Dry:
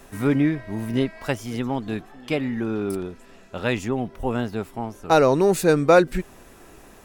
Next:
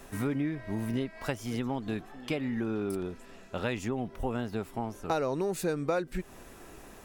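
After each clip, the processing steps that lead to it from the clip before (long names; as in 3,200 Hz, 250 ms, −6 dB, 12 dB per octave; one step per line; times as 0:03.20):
downward compressor 4 to 1, threshold −27 dBFS, peak gain reduction 14.5 dB
level −2 dB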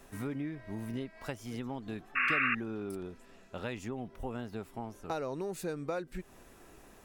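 sound drawn into the spectrogram noise, 0:02.15–0:02.55, 1,100–2,800 Hz −23 dBFS
level −6.5 dB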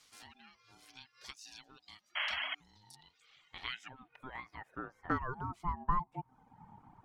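band-pass filter sweep 4,600 Hz → 360 Hz, 0:02.89–0:06.47
ring modulation 520 Hz
reverb reduction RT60 0.95 s
level +10.5 dB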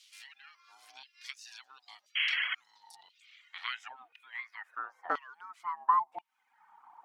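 auto-filter high-pass saw down 0.97 Hz 610–3,100 Hz
level +1 dB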